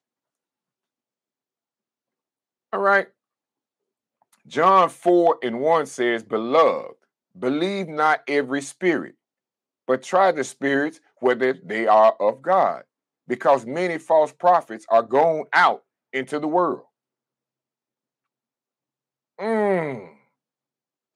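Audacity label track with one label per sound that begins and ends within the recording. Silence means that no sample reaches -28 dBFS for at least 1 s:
2.730000	3.030000	sound
4.540000	16.750000	sound
19.390000	19.990000	sound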